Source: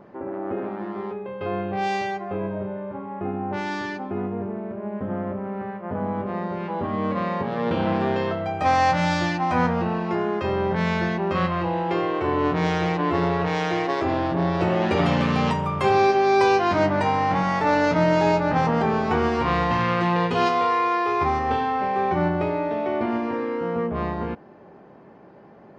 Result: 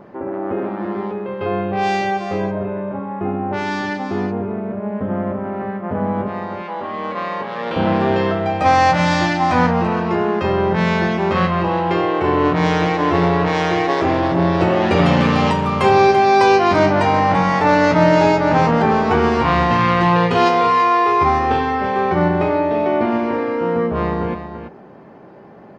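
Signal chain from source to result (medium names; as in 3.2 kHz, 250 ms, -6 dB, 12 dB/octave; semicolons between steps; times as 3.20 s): 6.28–7.76 s: high-pass 870 Hz 6 dB/octave; delay 337 ms -9.5 dB; trim +6 dB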